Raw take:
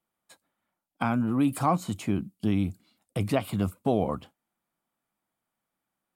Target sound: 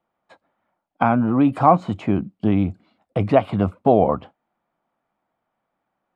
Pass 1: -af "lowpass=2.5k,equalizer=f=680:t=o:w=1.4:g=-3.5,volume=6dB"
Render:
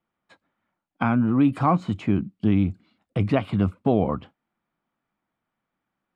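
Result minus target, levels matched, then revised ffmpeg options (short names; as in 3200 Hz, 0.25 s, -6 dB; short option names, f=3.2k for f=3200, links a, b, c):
500 Hz band -4.0 dB
-af "lowpass=2.5k,equalizer=f=680:t=o:w=1.4:g=7,volume=6dB"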